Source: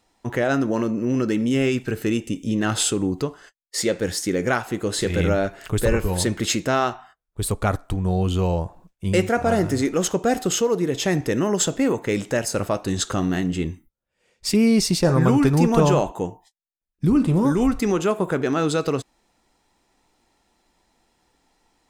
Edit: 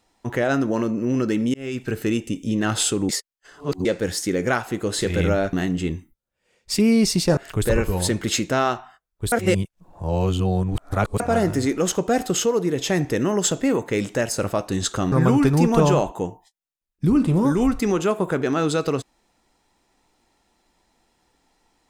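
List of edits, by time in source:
1.54–1.91 s: fade in
3.09–3.85 s: reverse
7.48–9.36 s: reverse
13.28–15.12 s: move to 5.53 s

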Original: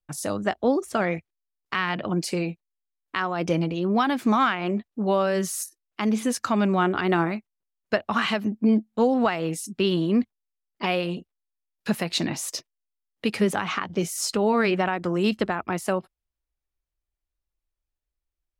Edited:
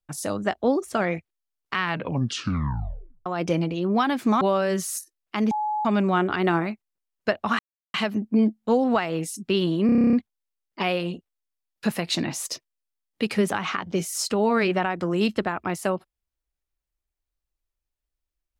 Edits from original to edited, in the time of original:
1.84 s: tape stop 1.42 s
4.41–5.06 s: delete
6.16–6.50 s: bleep 848 Hz -23 dBFS
8.24 s: insert silence 0.35 s
10.16 s: stutter 0.03 s, 10 plays

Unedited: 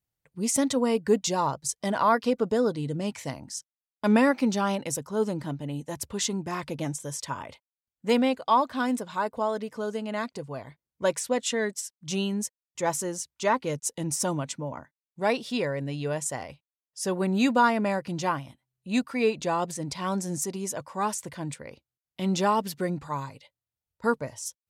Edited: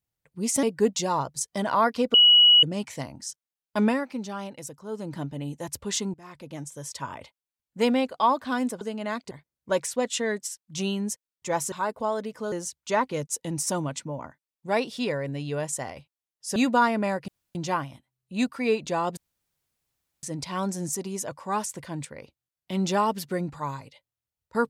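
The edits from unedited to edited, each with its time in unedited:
0.63–0.91 s: delete
2.42–2.91 s: bleep 2.92 kHz -12 dBFS
4.08–5.46 s: dip -8.5 dB, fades 0.21 s
6.42–7.46 s: fade in, from -19.5 dB
9.09–9.89 s: move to 13.05 s
10.39–10.64 s: delete
17.09–17.38 s: delete
18.10 s: insert room tone 0.27 s
19.72 s: insert room tone 1.06 s

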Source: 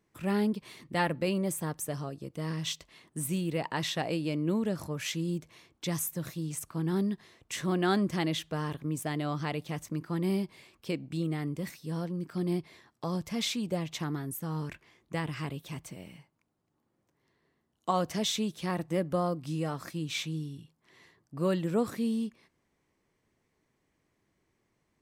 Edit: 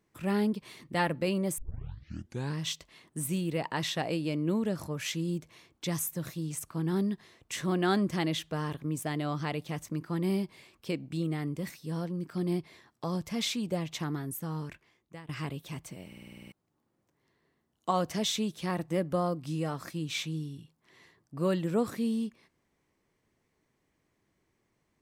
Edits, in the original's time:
1.58 s: tape start 1.00 s
14.40–15.29 s: fade out, to -19 dB
16.07 s: stutter in place 0.05 s, 9 plays

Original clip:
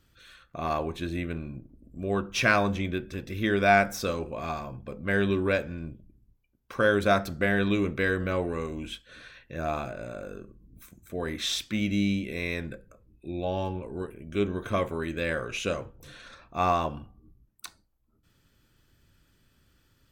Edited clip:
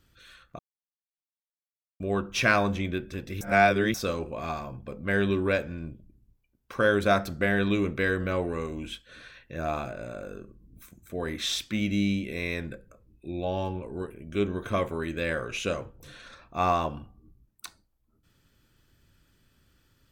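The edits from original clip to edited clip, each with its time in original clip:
0.59–2.00 s: mute
3.41–3.94 s: reverse

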